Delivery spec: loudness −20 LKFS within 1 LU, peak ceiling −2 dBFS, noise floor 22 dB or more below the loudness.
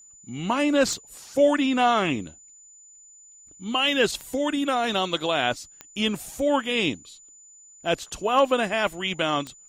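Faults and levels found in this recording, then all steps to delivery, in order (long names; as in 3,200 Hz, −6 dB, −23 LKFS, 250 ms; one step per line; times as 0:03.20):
number of clicks 4; interfering tone 7,000 Hz; level of the tone −48 dBFS; integrated loudness −24.0 LKFS; sample peak −8.5 dBFS; target loudness −20.0 LKFS
→ click removal
notch filter 7,000 Hz, Q 30
level +4 dB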